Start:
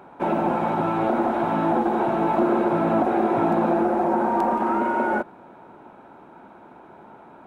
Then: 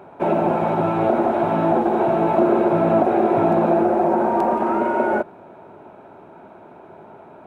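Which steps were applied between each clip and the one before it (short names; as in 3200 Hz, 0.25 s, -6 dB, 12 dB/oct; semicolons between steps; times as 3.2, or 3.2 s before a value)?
thirty-one-band EQ 100 Hz +9 dB, 160 Hz +5 dB, 400 Hz +7 dB, 630 Hz +8 dB, 2500 Hz +3 dB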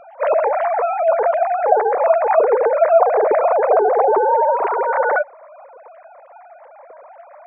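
sine-wave speech; gain +2.5 dB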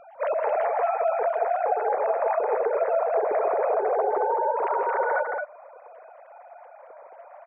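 compressor, threshold -16 dBFS, peak gain reduction 9 dB; on a send: loudspeakers at several distances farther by 55 m -9 dB, 76 m -4 dB; on the sum: gain -6.5 dB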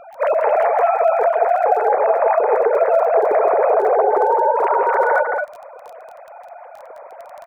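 crackle 17/s -38 dBFS; gain +8.5 dB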